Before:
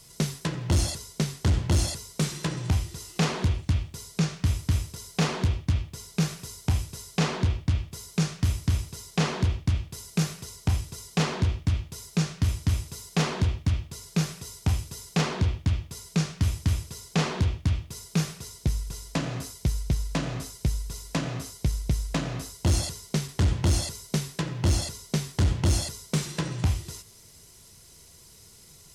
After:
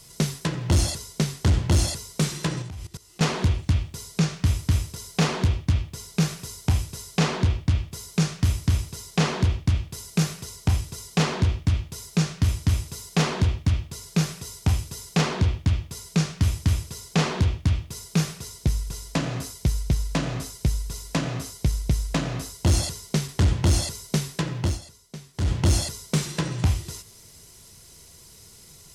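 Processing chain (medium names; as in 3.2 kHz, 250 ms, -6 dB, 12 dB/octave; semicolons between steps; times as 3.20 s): 2.62–3.21 s: level held to a coarse grid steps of 19 dB; 24.57–25.55 s: dip -15.5 dB, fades 0.22 s; trim +3 dB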